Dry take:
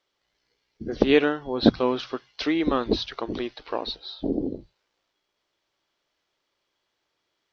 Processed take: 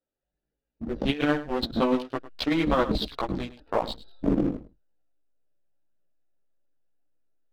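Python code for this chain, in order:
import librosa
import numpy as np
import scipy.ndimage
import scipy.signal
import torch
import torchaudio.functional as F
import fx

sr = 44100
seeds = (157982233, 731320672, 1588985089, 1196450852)

p1 = fx.wiener(x, sr, points=41)
p2 = fx.peak_eq(p1, sr, hz=390.0, db=-8.0, octaves=0.44)
p3 = fx.backlash(p2, sr, play_db=-23.5)
p4 = p2 + F.gain(torch.from_numpy(p3), -7.0).numpy()
p5 = fx.chorus_voices(p4, sr, voices=4, hz=0.31, base_ms=17, depth_ms=4.0, mix_pct=55)
p6 = fx.leveller(p5, sr, passes=1)
p7 = p6 + fx.echo_single(p6, sr, ms=103, db=-16.0, dry=0)
y = fx.over_compress(p7, sr, threshold_db=-22.0, ratio=-0.5)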